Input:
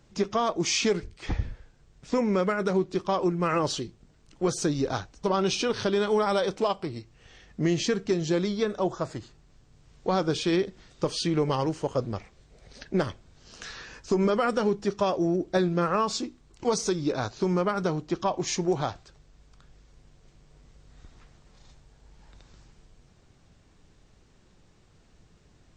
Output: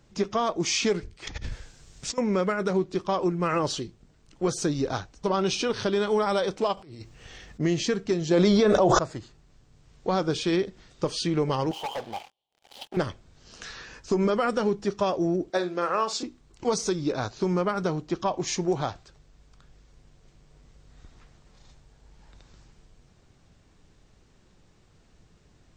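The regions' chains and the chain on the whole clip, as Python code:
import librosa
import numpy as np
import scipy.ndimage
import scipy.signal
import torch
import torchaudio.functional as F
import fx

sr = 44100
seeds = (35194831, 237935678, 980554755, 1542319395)

y = fx.chain(x, sr, fx.peak_eq(hz=7800.0, db=13.5, octaves=2.6),
    fx.over_compress(threshold_db=-36.0, ratio=-1.0), at=(1.27, 2.18))
y = fx.chain(y, sr, fx.high_shelf(hz=8500.0, db=6.0),
    fx.over_compress(threshold_db=-43.0, ratio=-1.0), at=(6.77, 7.6))
y = fx.chain(y, sr, fx.peak_eq(hz=630.0, db=6.0, octaves=1.0),
    fx.env_flatten(amount_pct=100), at=(8.31, 8.99))
y = fx.chain(y, sr, fx.double_bandpass(hz=1600.0, octaves=1.9),
    fx.leveller(passes=5), at=(11.71, 12.97))
y = fx.chain(y, sr, fx.highpass(hz=370.0, slope=12),
    fx.doubler(ms=50.0, db=-11.5), at=(15.5, 16.23))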